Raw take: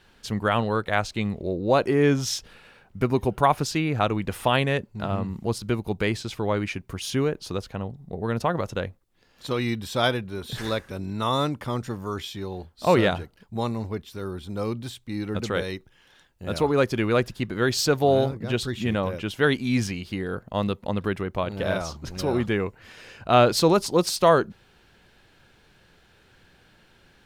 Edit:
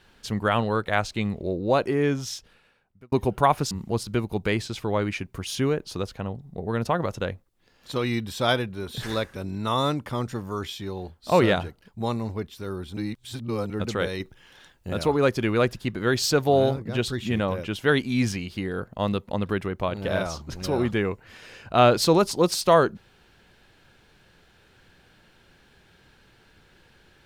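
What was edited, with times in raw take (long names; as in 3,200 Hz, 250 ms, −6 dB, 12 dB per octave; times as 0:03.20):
0:01.51–0:03.12: fade out
0:03.71–0:05.26: remove
0:14.52–0:15.25: reverse
0:15.75–0:16.48: clip gain +5 dB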